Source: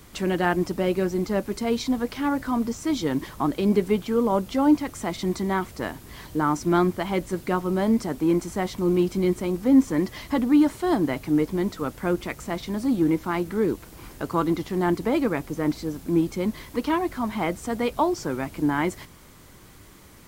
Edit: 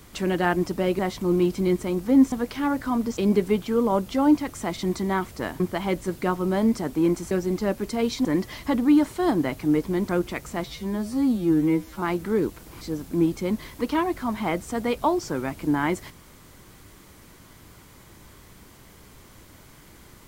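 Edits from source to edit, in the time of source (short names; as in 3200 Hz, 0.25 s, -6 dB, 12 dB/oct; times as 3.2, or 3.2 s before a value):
0.99–1.93 swap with 8.56–9.89
2.78–3.57 cut
6–6.85 cut
11.73–12.03 cut
12.6–13.28 stretch 2×
14.07–15.76 cut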